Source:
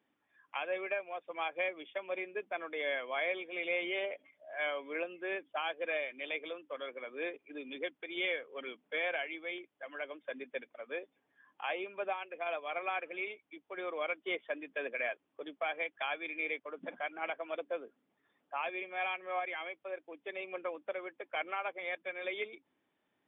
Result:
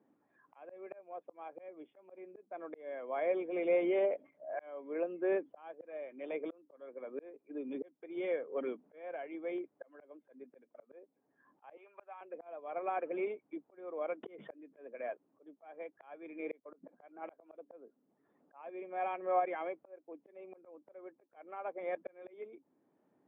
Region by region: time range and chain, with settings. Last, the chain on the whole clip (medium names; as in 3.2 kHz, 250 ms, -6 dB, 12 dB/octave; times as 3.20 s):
11.77–12.21 s: high-pass 900 Hz + peaking EQ 2.1 kHz +5 dB 2.4 oct
14.23–14.76 s: hum notches 50/100/150/200 Hz + dynamic bell 860 Hz, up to -5 dB, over -52 dBFS, Q 1.2 + swell ahead of each attack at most 42 dB/s
whole clip: Bessel low-pass 580 Hz, order 2; slow attack 727 ms; high-pass 140 Hz; trim +10.5 dB